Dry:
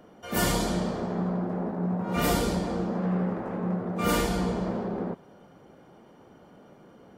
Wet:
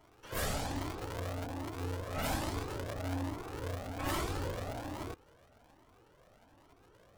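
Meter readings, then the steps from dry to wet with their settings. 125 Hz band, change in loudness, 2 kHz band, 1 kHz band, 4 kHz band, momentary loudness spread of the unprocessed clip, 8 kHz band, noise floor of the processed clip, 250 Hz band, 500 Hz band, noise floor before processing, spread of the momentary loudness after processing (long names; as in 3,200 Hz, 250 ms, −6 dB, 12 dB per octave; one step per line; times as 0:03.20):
−8.0 dB, −10.0 dB, −7.0 dB, −8.0 dB, −8.0 dB, 6 LU, −8.5 dB, −64 dBFS, −14.0 dB, −10.5 dB, −54 dBFS, 6 LU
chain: sub-harmonics by changed cycles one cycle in 2, inverted
flanger whose copies keep moving one way rising 1.2 Hz
level −5.5 dB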